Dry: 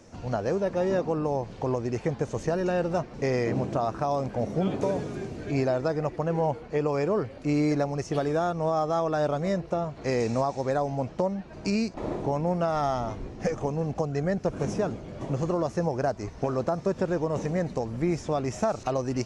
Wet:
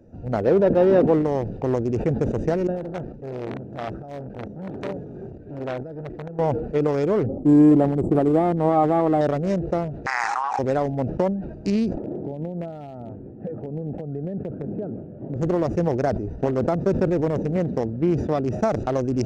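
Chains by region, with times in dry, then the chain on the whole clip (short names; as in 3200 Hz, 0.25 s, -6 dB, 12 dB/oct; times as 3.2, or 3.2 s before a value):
0.43–1.22 LPF 4300 Hz 24 dB/oct + bell 460 Hz +4.5 dB 2 oct
2.67–6.39 pump 133 bpm, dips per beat 1, -14 dB, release 0.35 s + core saturation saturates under 1900 Hz
7.26–9.21 brick-wall FIR band-stop 1300–7100 Hz + small resonant body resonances 220/320/780/3200 Hz, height 6 dB, ringing for 30 ms
10.06–10.59 brick-wall FIR high-pass 740 Hz + resonant high shelf 2100 Hz -10.5 dB, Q 3 + fast leveller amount 100%
11.98–15.36 HPF 120 Hz + compressor 16:1, threshold -27 dBFS + air absorption 500 m
17.56–18.62 HPF 74 Hz + bell 7600 Hz -8 dB 0.33 oct
whole clip: Wiener smoothing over 41 samples; dynamic EQ 340 Hz, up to +4 dB, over -37 dBFS, Q 0.83; sustainer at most 63 dB/s; gain +3 dB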